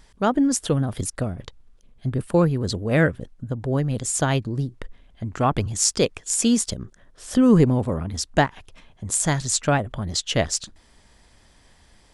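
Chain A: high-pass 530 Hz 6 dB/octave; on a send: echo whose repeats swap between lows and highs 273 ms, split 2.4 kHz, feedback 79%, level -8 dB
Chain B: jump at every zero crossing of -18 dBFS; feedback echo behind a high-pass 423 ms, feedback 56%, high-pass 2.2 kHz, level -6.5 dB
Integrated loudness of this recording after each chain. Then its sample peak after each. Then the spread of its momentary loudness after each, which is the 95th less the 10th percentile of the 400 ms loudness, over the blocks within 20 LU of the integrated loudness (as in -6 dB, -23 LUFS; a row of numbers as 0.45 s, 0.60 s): -26.0 LUFS, -18.5 LUFS; -3.0 dBFS, -2.5 dBFS; 14 LU, 8 LU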